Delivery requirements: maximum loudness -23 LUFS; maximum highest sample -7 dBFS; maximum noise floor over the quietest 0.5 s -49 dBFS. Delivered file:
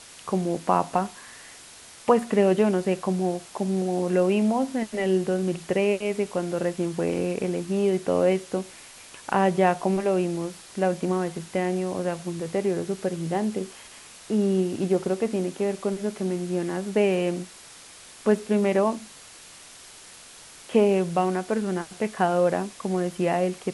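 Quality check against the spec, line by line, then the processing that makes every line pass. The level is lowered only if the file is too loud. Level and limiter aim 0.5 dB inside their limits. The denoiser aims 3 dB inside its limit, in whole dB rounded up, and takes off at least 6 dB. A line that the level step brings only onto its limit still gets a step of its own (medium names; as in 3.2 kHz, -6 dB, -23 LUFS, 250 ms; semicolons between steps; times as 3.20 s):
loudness -25.5 LUFS: pass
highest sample -5.5 dBFS: fail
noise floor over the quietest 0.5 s -47 dBFS: fail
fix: noise reduction 6 dB, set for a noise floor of -47 dBFS; peak limiter -7.5 dBFS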